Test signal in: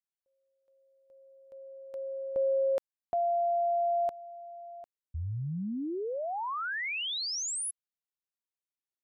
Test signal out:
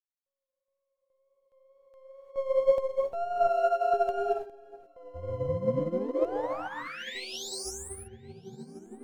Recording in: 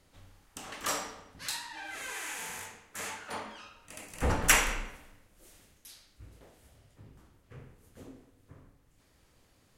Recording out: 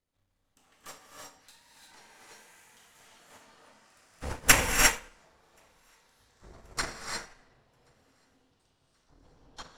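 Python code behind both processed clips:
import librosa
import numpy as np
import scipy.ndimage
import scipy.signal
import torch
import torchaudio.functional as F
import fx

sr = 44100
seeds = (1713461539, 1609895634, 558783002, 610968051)

y = np.where(x < 0.0, 10.0 ** (-7.0 / 20.0) * x, x)
y = fx.echo_pitch(y, sr, ms=787, semitones=-5, count=3, db_per_echo=-6.0)
y = fx.wow_flutter(y, sr, seeds[0], rate_hz=2.1, depth_cents=43.0)
y = fx.echo_feedback(y, sr, ms=1080, feedback_pct=44, wet_db=-21.0)
y = fx.rev_gated(y, sr, seeds[1], gate_ms=380, shape='rising', drr_db=-2.0)
y = fx.upward_expand(y, sr, threshold_db=-37.0, expansion=2.5)
y = F.gain(torch.from_numpy(y), 6.5).numpy()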